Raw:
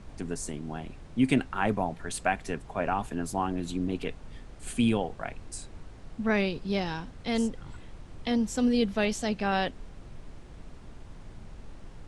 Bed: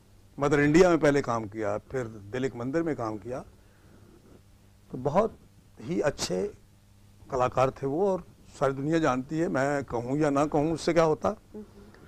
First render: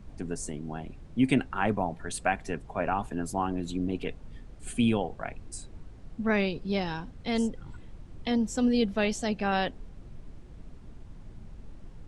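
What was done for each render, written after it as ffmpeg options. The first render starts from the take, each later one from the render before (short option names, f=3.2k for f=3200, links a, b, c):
-af "afftdn=nr=7:nf=-47"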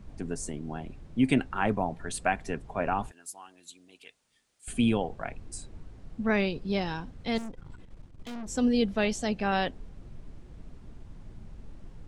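-filter_complex "[0:a]asettb=1/sr,asplit=3[a][b][c];[a]atrim=end=3.114[d];[b]atrim=start=3.11:end=4.68,asetpts=PTS-STARTPTS,afade=t=in:d=0.004:c=qsin,afade=t=out:st=1.566:d=0.004:c=qsin,aderivative[e];[c]atrim=start=4.676[f];[d][e]acrossfade=d=0.004:c1=hsin:c2=qsin[g];[g][f]acrossfade=d=0.004:c1=qsin:c2=hsin,asettb=1/sr,asplit=3[h][i][j];[h]atrim=end=7.384[k];[i]atrim=start=7.38:end=8.47,asetpts=PTS-STARTPTS,afade=t=in:d=0.004:c=qsin,afade=t=out:st=1.086:d=0.004:c=qsin,aeval=exprs='(tanh(70.8*val(0)+0.7)-tanh(0.7))/70.8':c=same[l];[j]atrim=start=8.466[m];[k][l]acrossfade=d=0.004:c1=hsin:c2=qsin[n];[n][m]acrossfade=d=0.004:c1=qsin:c2=hsin"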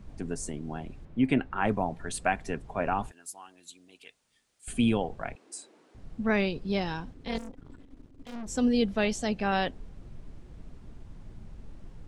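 -filter_complex "[0:a]asettb=1/sr,asplit=3[a][b][c];[a]atrim=end=1.054[d];[b]atrim=start=1.05:end=1.64,asetpts=PTS-STARTPTS,afade=t=in:d=0.004:c=qsin,afade=t=out:st=0.586:d=0.004:c=qsin,bass=f=250:g=-2,treble=f=4k:g=-14[e];[c]atrim=start=1.636[f];[d][e]acrossfade=d=0.004:c1=hsin:c2=qsin[g];[g][f]acrossfade=d=0.004:c1=qsin:c2=hsin,asettb=1/sr,asplit=3[h][i][j];[h]atrim=end=5.354[k];[i]atrim=start=5.35:end=5.95,asetpts=PTS-STARTPTS,afade=t=in:d=0.004:c=qsin,afade=t=out:st=0.596:d=0.004:c=qsin,highpass=f=310:w=0.5412,highpass=f=310:w=1.3066[l];[j]atrim=start=5.946[m];[k][l]acrossfade=d=0.004:c1=hsin:c2=qsin[n];[n][m]acrossfade=d=0.004:c1=qsin:c2=hsin,asettb=1/sr,asplit=3[o][p][q];[o]atrim=end=7.134[r];[p]atrim=start=7.13:end=8.34,asetpts=PTS-STARTPTS,afade=t=in:d=0.004:c=qsin,afade=t=out:st=1.206:d=0.004:c=qsin,tremolo=f=270:d=0.857[s];[q]atrim=start=8.336[t];[r][s]acrossfade=d=0.004:c1=hsin:c2=qsin[u];[u][t]acrossfade=d=0.004:c1=qsin:c2=hsin"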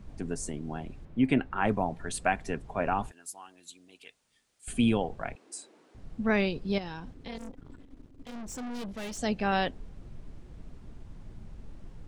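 -filter_complex "[0:a]asettb=1/sr,asplit=3[a][b][c];[a]atrim=end=6.784[d];[b]atrim=start=6.78:end=7.41,asetpts=PTS-STARTPTS,afade=t=in:d=0.004:c=qsin,afade=t=out:st=0.626:d=0.004:c=qsin,acompressor=threshold=-37dB:ratio=3:attack=3.2:release=140:knee=1:detection=peak[e];[c]atrim=start=7.406[f];[d][e]acrossfade=d=0.004:c1=hsin:c2=qsin[g];[g][f]acrossfade=d=0.004:c1=qsin:c2=hsin,asplit=3[h][i][j];[h]afade=t=out:st=8.31:d=0.02[k];[i]aeval=exprs='(tanh(63.1*val(0)+0.3)-tanh(0.3))/63.1':c=same,afade=t=in:st=8.31:d=0.02,afade=t=out:st=9.17:d=0.02[l];[j]afade=t=in:st=9.17:d=0.02[m];[k][l][m]amix=inputs=3:normalize=0"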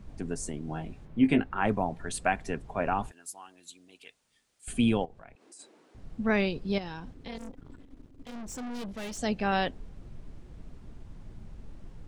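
-filter_complex "[0:a]asettb=1/sr,asplit=3[a][b][c];[a]atrim=end=0.664[d];[b]atrim=start=0.66:end=1.44,asetpts=PTS-STARTPTS,afade=t=in:d=0.004:c=qsin,afade=t=out:st=0.776:d=0.004:c=qsin,asplit=2[e][f];[f]adelay=19,volume=-5.5dB[g];[e][g]amix=inputs=2:normalize=0,atrim=end_sample=34398[h];[c]atrim=start=1.436[i];[d][h]acrossfade=d=0.004:c1=hsin:c2=qsin[j];[j][i]acrossfade=d=0.004:c1=qsin:c2=hsin,asplit=3[k][l][m];[k]afade=t=out:st=5.04:d=0.02[n];[l]acompressor=threshold=-53dB:ratio=2.5:attack=3.2:release=140:knee=1:detection=peak,afade=t=in:st=5.04:d=0.02,afade=t=out:st=5.59:d=0.02[o];[m]afade=t=in:st=5.59:d=0.02[p];[n][o][p]amix=inputs=3:normalize=0"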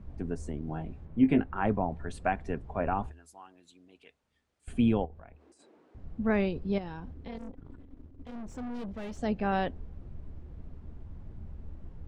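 -af "lowpass=f=1.2k:p=1,equalizer=f=75:w=6.4:g=14"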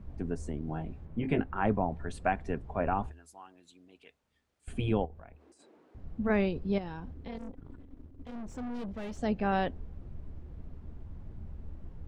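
-af "afftfilt=real='re*lt(hypot(re,im),0.631)':imag='im*lt(hypot(re,im),0.631)':win_size=1024:overlap=0.75"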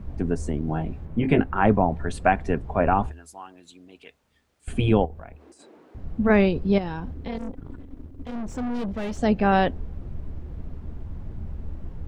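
-af "volume=9.5dB"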